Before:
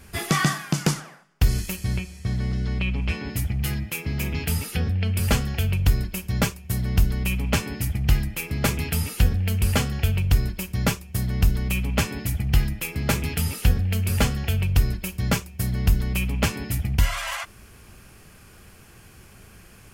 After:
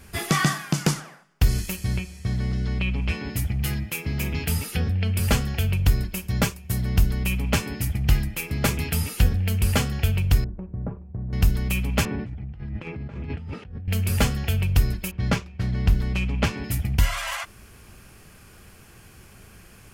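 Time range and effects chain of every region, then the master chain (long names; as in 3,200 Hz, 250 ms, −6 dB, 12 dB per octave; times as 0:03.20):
0:10.44–0:11.33: Bessel low-pass filter 690 Hz, order 4 + downward compressor 2.5 to 1, threshold −29 dBFS
0:12.05–0:13.88: high-pass filter 53 Hz 24 dB per octave + compressor whose output falls as the input rises −32 dBFS + head-to-tape spacing loss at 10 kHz 42 dB
0:15.11–0:16.64: running median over 5 samples + low-pass that shuts in the quiet parts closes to 2,100 Hz, open at −15.5 dBFS
whole clip: no processing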